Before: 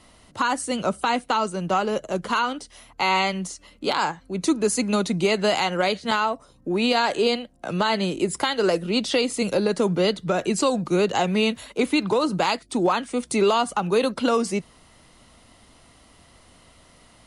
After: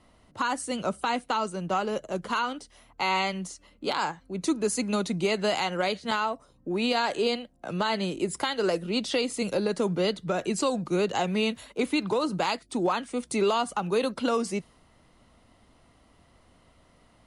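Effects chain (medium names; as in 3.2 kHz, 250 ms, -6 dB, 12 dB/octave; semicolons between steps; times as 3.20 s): tape noise reduction on one side only decoder only; trim -5 dB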